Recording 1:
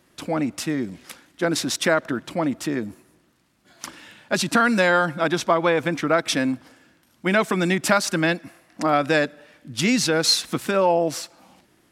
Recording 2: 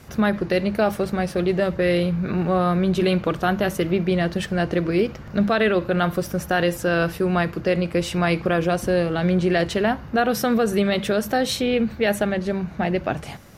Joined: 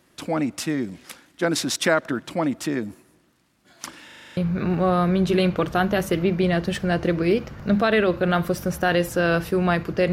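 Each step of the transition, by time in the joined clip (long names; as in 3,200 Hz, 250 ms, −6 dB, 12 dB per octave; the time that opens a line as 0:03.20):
recording 1
0:04.05: stutter in place 0.04 s, 8 plays
0:04.37: continue with recording 2 from 0:02.05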